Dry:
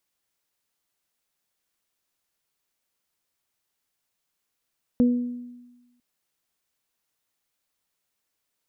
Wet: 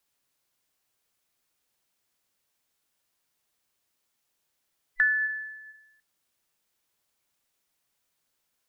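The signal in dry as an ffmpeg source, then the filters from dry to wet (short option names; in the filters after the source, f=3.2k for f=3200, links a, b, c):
-f lavfi -i "aevalsrc='0.2*pow(10,-3*t/1.17)*sin(2*PI*244*t)+0.0596*pow(10,-3*t/0.62)*sin(2*PI*488*t)':d=1:s=44100"
-filter_complex "[0:a]afftfilt=real='real(if(between(b,1,1012),(2*floor((b-1)/92)+1)*92-b,b),0)':imag='imag(if(between(b,1,1012),(2*floor((b-1)/92)+1)*92-b,b),0)*if(between(b,1,1012),-1,1)':win_size=2048:overlap=0.75,asplit=2[a][b];[b]acompressor=threshold=-30dB:ratio=6,volume=1.5dB[c];[a][c]amix=inputs=2:normalize=0,flanger=delay=6.9:depth=1.7:regen=83:speed=0.38:shape=triangular"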